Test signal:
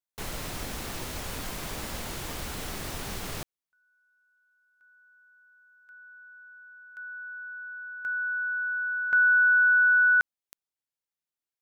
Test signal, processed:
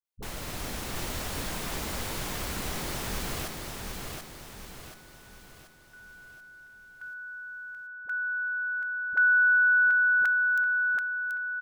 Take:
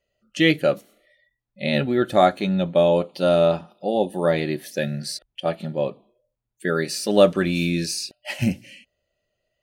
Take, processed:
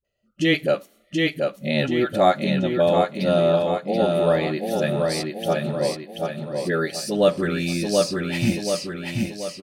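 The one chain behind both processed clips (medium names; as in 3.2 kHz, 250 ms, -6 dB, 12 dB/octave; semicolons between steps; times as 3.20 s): on a send: feedback delay 732 ms, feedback 46%, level -4 dB; on the sum: level rider gain up to 3 dB; phase dispersion highs, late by 47 ms, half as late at 390 Hz; speakerphone echo 80 ms, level -28 dB; trim -2.5 dB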